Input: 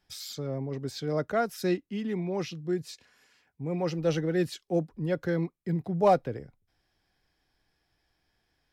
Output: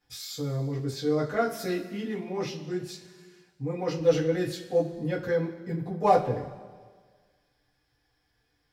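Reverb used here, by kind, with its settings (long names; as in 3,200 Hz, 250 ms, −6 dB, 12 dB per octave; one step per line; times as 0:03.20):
coupled-rooms reverb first 0.21 s, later 1.6 s, from −18 dB, DRR −7.5 dB
level −6.5 dB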